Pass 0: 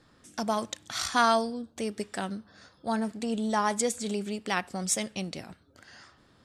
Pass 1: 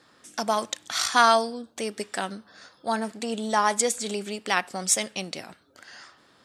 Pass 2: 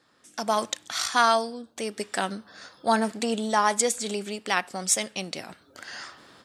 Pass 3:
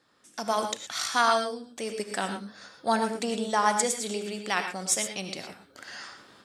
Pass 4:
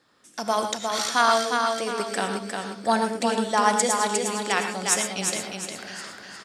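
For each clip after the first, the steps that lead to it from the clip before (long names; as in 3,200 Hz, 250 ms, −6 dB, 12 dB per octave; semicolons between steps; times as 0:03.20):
high-pass filter 490 Hz 6 dB per octave; level +6 dB
automatic gain control gain up to 14 dB; level −6.5 dB
reverb whose tail is shaped and stops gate 140 ms rising, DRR 6 dB; level −3 dB
repeating echo 356 ms, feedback 38%, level −4.5 dB; level +3 dB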